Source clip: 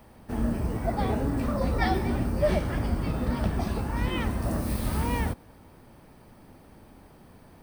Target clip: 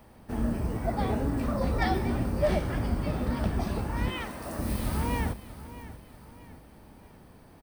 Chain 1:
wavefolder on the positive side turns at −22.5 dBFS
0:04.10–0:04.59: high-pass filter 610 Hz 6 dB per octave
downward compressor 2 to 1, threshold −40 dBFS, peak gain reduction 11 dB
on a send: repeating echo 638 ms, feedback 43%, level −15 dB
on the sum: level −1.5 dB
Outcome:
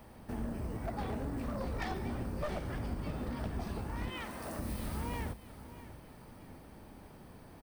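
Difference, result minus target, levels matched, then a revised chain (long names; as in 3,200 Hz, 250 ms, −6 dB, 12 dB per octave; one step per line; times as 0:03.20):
wavefolder on the positive side: distortion +28 dB; downward compressor: peak gain reduction +11 dB
wavefolder on the positive side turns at −15.5 dBFS
0:04.10–0:04.59: high-pass filter 610 Hz 6 dB per octave
on a send: repeating echo 638 ms, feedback 43%, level −15 dB
on the sum: level −1.5 dB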